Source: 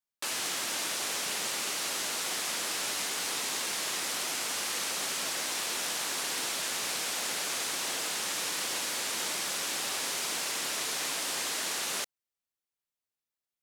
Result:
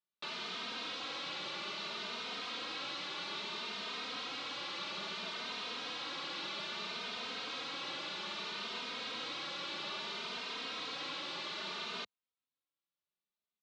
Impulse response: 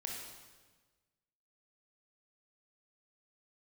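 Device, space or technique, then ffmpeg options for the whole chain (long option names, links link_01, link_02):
barber-pole flanger into a guitar amplifier: -filter_complex "[0:a]asplit=2[link_01][link_02];[link_02]adelay=3,afreqshift=0.61[link_03];[link_01][link_03]amix=inputs=2:normalize=1,asoftclip=type=tanh:threshold=-34.5dB,highpass=80,equalizer=frequency=100:width_type=q:width=4:gain=-8,equalizer=frequency=200:width_type=q:width=4:gain=5,equalizer=frequency=740:width_type=q:width=4:gain=-4,equalizer=frequency=1200:width_type=q:width=4:gain=3,equalizer=frequency=1800:width_type=q:width=4:gain=-6,equalizer=frequency=3900:width_type=q:width=4:gain=5,lowpass=frequency=4000:width=0.5412,lowpass=frequency=4000:width=1.3066,volume=1dB"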